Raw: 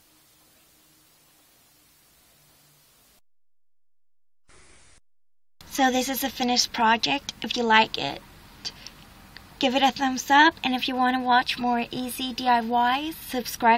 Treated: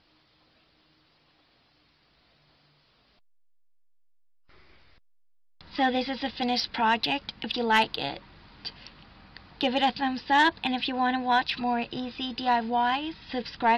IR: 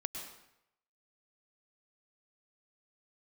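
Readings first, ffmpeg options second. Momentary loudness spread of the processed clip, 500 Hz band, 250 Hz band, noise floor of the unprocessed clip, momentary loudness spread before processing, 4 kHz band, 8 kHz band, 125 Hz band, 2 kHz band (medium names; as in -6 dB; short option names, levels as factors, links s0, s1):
12 LU, -3.5 dB, -3.5 dB, -59 dBFS, 12 LU, -4.0 dB, -18.0 dB, -3.0 dB, -4.0 dB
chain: -af "aresample=11025,aresample=44100,aeval=exprs='0.708*(cos(1*acos(clip(val(0)/0.708,-1,1)))-cos(1*PI/2))+0.0631*(cos(5*acos(clip(val(0)/0.708,-1,1)))-cos(5*PI/2))':c=same,volume=0.501"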